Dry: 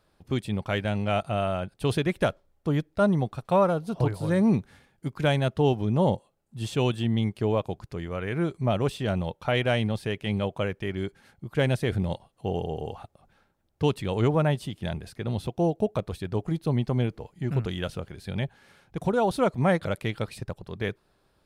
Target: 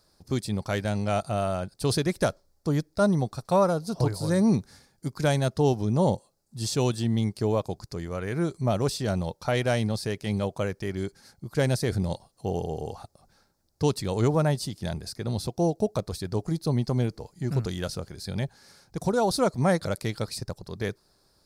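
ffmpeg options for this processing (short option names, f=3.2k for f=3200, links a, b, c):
-af "highshelf=f=3.8k:t=q:w=3:g=8"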